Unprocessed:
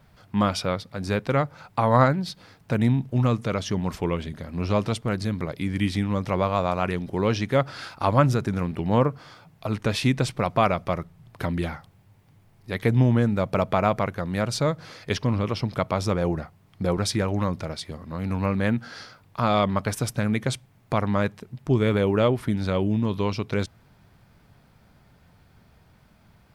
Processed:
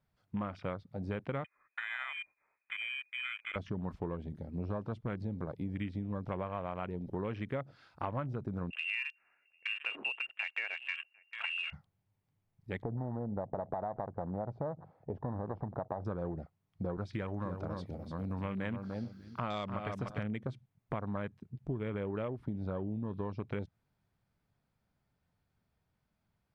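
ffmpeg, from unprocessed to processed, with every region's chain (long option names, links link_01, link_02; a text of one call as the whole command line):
ffmpeg -i in.wav -filter_complex "[0:a]asettb=1/sr,asplit=3[link_01][link_02][link_03];[link_01]atrim=end=1.444[link_04];[link_02]atrim=start=1.44:end=3.56,asetpts=PTS-STARTPTS,afade=type=in:duration=0.004:curve=qsin,afade=type=out:start_time=2.116:duration=0.004:curve=qsin,lowshelf=frequency=480:gain=-8,acompressor=threshold=-26dB:ratio=5:attack=3.2:release=140:knee=1:detection=peak,lowpass=frequency=2200:width_type=q:width=0.5098,lowpass=frequency=2200:width_type=q:width=0.6013,lowpass=frequency=2200:width_type=q:width=0.9,lowpass=frequency=2200:width_type=q:width=2.563,afreqshift=-2600[link_05];[link_03]atrim=start=3.556[link_06];[link_04][link_05]acrossfade=duration=0.004:curve1=hsin:curve2=qsin[link_07];[link_07][link_06]acrossfade=duration=0.004:curve1=qsin:curve2=hsin,asettb=1/sr,asplit=3[link_08][link_09][link_10];[link_08]atrim=end=8.704[link_11];[link_09]atrim=start=8.7:end=11.73,asetpts=PTS-STARTPTS,afade=type=in:duration=0.004:curve=qsin,afade=type=out:start_time=3.026:duration=0.004:curve=qsin,lowpass=frequency=2500:width_type=q:width=0.5098,lowpass=frequency=2500:width_type=q:width=0.6013,lowpass=frequency=2500:width_type=q:width=0.9,lowpass=frequency=2500:width_type=q:width=2.563,afreqshift=-2900,aecho=1:1:749:0.133,atrim=end_sample=133623[link_12];[link_10]atrim=start=11.726[link_13];[link_11][link_12]acrossfade=duration=0.004:curve1=hsin:curve2=qsin[link_14];[link_14][link_13]acrossfade=duration=0.004:curve1=qsin:curve2=hsin,asettb=1/sr,asplit=3[link_15][link_16][link_17];[link_15]atrim=end=12.824[link_18];[link_16]atrim=start=12.82:end=16.05,asetpts=PTS-STARTPTS,afade=type=in:duration=0.004:curve=qsin,afade=type=out:start_time=3.226:duration=0.004:curve=qsin,acompressor=threshold=-24dB:ratio=5:attack=3.2:release=140:knee=1:detection=peak,lowpass=frequency=800:width_type=q:width=4.2[link_19];[link_17]atrim=start=16.046[link_20];[link_18][link_19]acrossfade=duration=0.004:curve1=hsin:curve2=qsin[link_21];[link_21][link_20]acrossfade=duration=0.004:curve1=qsin:curve2=hsin,asettb=1/sr,asplit=3[link_22][link_23][link_24];[link_22]atrim=end=17.134[link_25];[link_23]atrim=start=17.13:end=20.23,asetpts=PTS-STARTPTS,afade=type=in:duration=0.004:curve=qsin,afade=type=out:start_time=3.096:duration=0.004:curve=qsin,aemphasis=mode=production:type=75fm,aecho=1:1:297|594|891:0.447|0.103|0.0236,atrim=end_sample=136710[link_26];[link_24]atrim=start=20.226[link_27];[link_25][link_26]acrossfade=duration=0.004:curve1=hsin:curve2=qsin[link_28];[link_28][link_27]acrossfade=duration=0.004:curve1=qsin:curve2=hsin,acrossover=split=4900[link_29][link_30];[link_30]acompressor=threshold=-59dB:ratio=4:attack=1:release=60[link_31];[link_29][link_31]amix=inputs=2:normalize=0,afwtdn=0.0224,acompressor=threshold=-26dB:ratio=10,volume=-7dB" out.wav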